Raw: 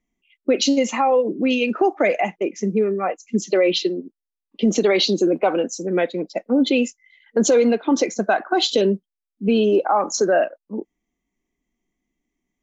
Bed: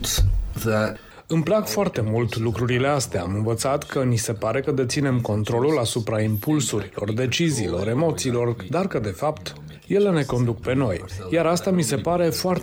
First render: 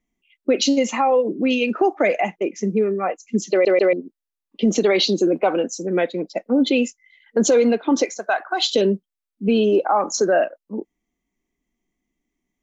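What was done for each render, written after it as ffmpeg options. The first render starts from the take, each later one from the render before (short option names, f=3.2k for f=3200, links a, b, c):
-filter_complex "[0:a]asettb=1/sr,asplit=3[a][b][c];[a]atrim=end=8.054[d];[b]atrim=start=8.05:end=8.75,asetpts=PTS-STARTPTS,afade=t=in:d=0.004:c=qsin,afade=t=out:st=0.696:d=0.004:c=qsin,highpass=660[e];[c]atrim=start=8.746[f];[d][e]acrossfade=d=0.004:c1=hsin:c2=qsin[g];[g][f]acrossfade=d=0.004:c1=qsin:c2=hsin,asplit=4[h][i][j][k];[h]atrim=end=3.652[l];[i]atrim=start=3.508:end=3.652[m];[j]atrim=start=3.508:end=3.652[n];[k]atrim=start=3.928[o];[l][m]acrossfade=d=0.004:c1=hsin:c2=hsin[p];[p][n]acrossfade=d=0.004:c1=hsin:c2=hsin[q];[q][o]acrossfade=d=0.004:c1=hsin:c2=hsin"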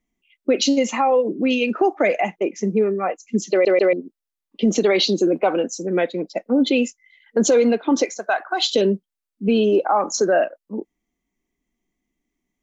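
-filter_complex "[0:a]asettb=1/sr,asplit=3[a][b][c];[a]atrim=end=2.384[d];[b]atrim=start=2.38:end=2.9,asetpts=PTS-STARTPTS,afade=t=in:d=0.004:c=qsin,afade=t=out:st=0.516:d=0.004:c=qsin,equalizer=f=840:w=1.5:g=5.5[e];[c]atrim=start=2.896[f];[d][e]acrossfade=d=0.004:c1=hsin:c2=qsin[g];[g][f]acrossfade=d=0.004:c1=qsin:c2=hsin"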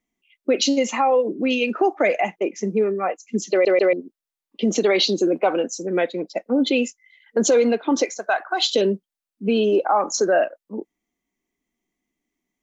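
-af "lowshelf=f=140:g=-10.5"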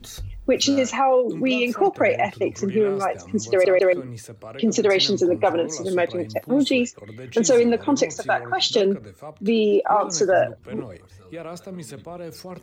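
-filter_complex "[1:a]volume=-15dB[a];[0:a][a]amix=inputs=2:normalize=0"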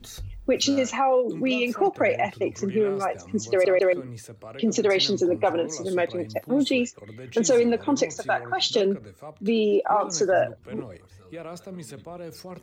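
-af "volume=-3dB"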